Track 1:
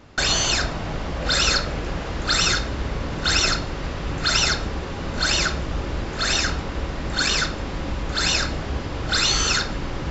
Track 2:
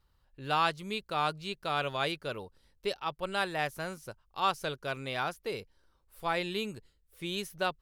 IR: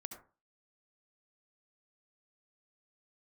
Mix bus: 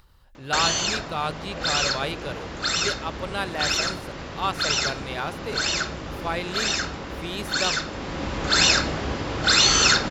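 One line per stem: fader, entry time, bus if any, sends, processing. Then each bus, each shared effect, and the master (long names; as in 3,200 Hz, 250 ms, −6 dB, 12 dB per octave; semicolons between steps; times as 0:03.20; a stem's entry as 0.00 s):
+2.5 dB, 0.35 s, no send, high-pass filter 140 Hz 6 dB per octave; speech leveller within 4 dB 2 s; automatic ducking −7 dB, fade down 1.10 s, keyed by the second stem
+2.5 dB, 0.00 s, no send, no processing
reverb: not used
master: upward compression, threshold −45 dBFS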